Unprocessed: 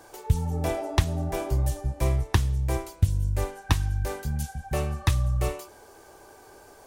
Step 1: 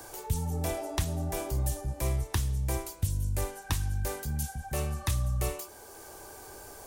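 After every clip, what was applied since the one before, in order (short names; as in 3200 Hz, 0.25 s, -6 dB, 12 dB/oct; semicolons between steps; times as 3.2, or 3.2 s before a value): high shelf 5800 Hz +11.5 dB; transient shaper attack -4 dB, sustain +1 dB; three-band squash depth 40%; gain -4.5 dB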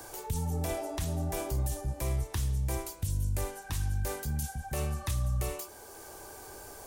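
limiter -22.5 dBFS, peak gain reduction 8.5 dB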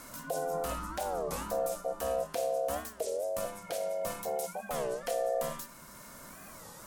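de-hum 98.49 Hz, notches 32; ring modulator 600 Hz; record warp 33 1/3 rpm, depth 250 cents; gain +1 dB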